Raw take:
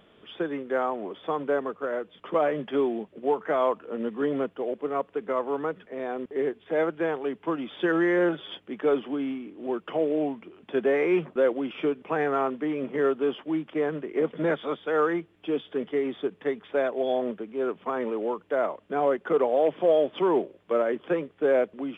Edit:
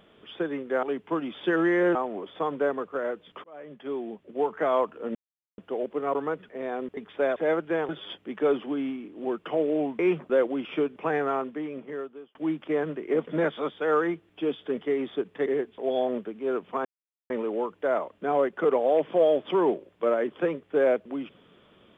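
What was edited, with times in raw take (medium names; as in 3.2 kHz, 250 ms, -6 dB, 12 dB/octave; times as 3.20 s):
2.32–3.50 s: fade in
4.03–4.46 s: mute
5.03–5.52 s: delete
6.34–6.66 s: swap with 16.52–16.91 s
7.19–8.31 s: move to 0.83 s
10.41–11.05 s: delete
12.14–13.41 s: fade out
17.98 s: insert silence 0.45 s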